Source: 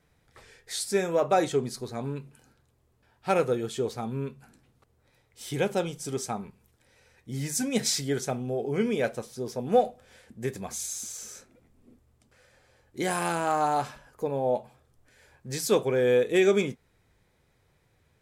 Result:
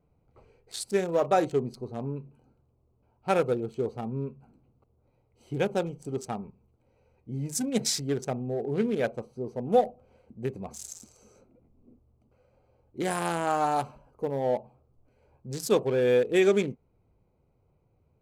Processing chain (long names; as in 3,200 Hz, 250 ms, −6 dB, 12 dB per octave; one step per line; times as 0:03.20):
adaptive Wiener filter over 25 samples
0:13.77–0:14.39: high-shelf EQ 5,200 Hz → 9,200 Hz +7.5 dB